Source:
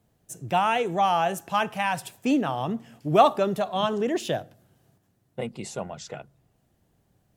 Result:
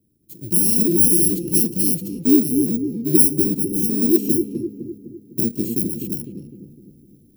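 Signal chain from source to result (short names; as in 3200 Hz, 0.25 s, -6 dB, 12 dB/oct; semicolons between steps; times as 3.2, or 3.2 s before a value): FFT order left unsorted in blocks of 64 samples; EQ curve 140 Hz 0 dB, 340 Hz +13 dB, 610 Hz -15 dB, 1000 Hz -28 dB, 1500 Hz -29 dB, 2700 Hz -14 dB, 5300 Hz -8 dB, 7600 Hz -7 dB, 14000 Hz +2 dB; AGC gain up to 9.5 dB; on a send: darkening echo 0.253 s, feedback 54%, low-pass 960 Hz, level -4.5 dB; on the sum: gain -1 dB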